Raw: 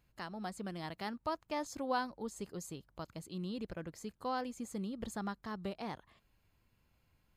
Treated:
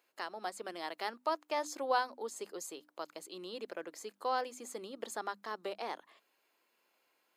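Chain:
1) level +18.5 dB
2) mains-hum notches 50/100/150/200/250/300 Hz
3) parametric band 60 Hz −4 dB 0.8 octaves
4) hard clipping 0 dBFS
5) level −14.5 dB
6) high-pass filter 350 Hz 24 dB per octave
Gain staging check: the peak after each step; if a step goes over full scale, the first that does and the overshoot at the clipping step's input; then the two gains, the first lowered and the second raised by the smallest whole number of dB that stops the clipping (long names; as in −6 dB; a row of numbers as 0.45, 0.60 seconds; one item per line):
−3.5, −3.0, −3.0, −3.0, −17.5, −18.0 dBFS
no step passes full scale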